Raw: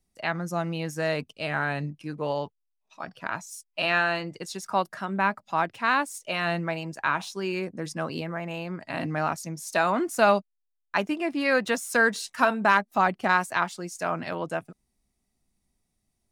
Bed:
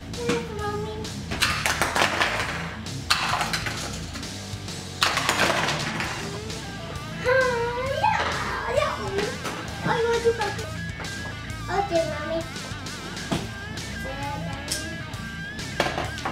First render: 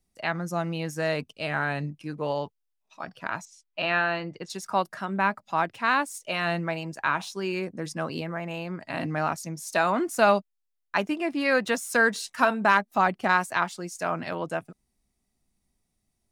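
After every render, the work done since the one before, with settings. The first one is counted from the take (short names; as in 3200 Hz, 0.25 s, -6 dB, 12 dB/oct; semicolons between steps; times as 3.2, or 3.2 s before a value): 3.45–4.5 air absorption 140 m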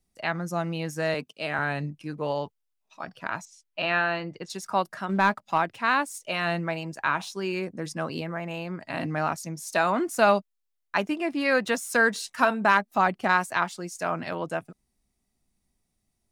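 1.14–1.59 HPF 180 Hz; 5.09–5.58 sample leveller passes 1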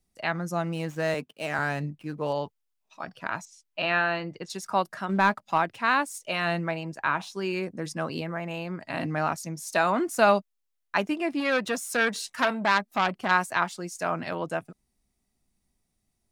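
0.67–2.33 median filter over 9 samples; 6.71–7.34 high shelf 3800 Hz -6 dB; 11.4–13.31 core saturation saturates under 1900 Hz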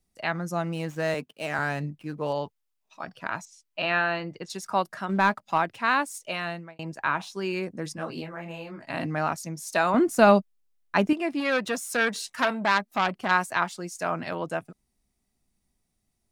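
6.21–6.79 fade out; 7.96–8.87 detuned doubles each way 32 cents; 9.94–11.13 low shelf 390 Hz +10.5 dB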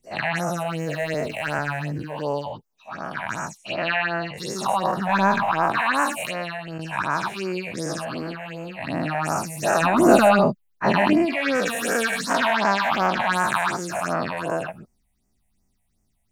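spectral dilation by 0.24 s; phaser stages 6, 2.7 Hz, lowest notch 320–3800 Hz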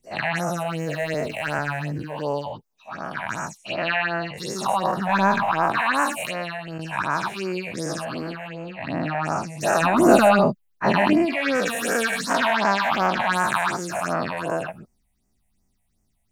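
8.48–9.61 air absorption 95 m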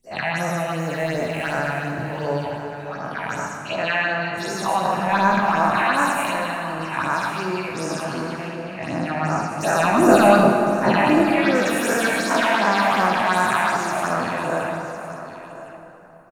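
echo 1.056 s -14.5 dB; plate-style reverb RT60 3.6 s, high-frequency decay 0.55×, pre-delay 0 ms, DRR 2 dB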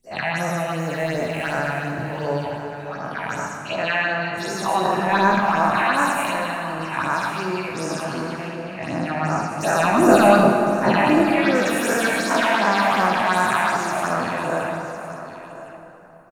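4.74–5.35 small resonant body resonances 370/1800/3900 Hz, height 10 dB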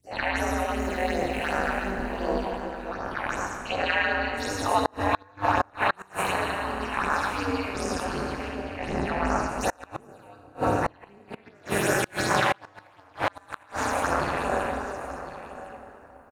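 flipped gate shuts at -8 dBFS, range -33 dB; ring modulator 100 Hz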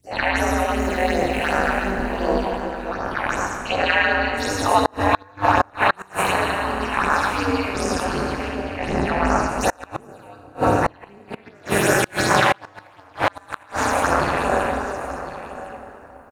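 gain +6.5 dB; limiter -2 dBFS, peak gain reduction 1.5 dB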